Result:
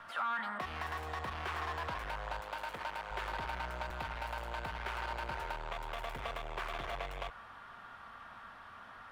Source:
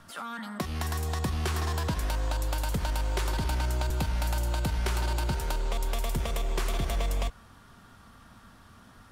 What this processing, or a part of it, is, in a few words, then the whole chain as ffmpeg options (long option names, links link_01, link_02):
saturation between pre-emphasis and de-emphasis: -filter_complex "[0:a]highshelf=frequency=2000:gain=11,asoftclip=type=tanh:threshold=-31.5dB,highshelf=frequency=2000:gain=-11,asettb=1/sr,asplit=3[link_01][link_02][link_03];[link_01]atrim=end=2.404[link_04];[link_02]atrim=start=2.4:end=3.11,asetpts=PTS-STARTPTS,afade=type=in:duration=0.004:curve=qsin,afade=type=out:start_time=0.706:duration=0.004:curve=qsin,highpass=frequency=230:poles=1[link_05];[link_03]atrim=start=3.106[link_06];[link_04][link_05]acrossfade=duration=0.004:curve1=hsin:curve2=qsin[link_07];[link_07][link_06]acrossfade=duration=0.004:curve1=qsin:curve2=hsin,acrossover=split=590 3000:gain=0.126 1 0.0891[link_08][link_09][link_10];[link_08][link_09][link_10]amix=inputs=3:normalize=0,volume=7dB"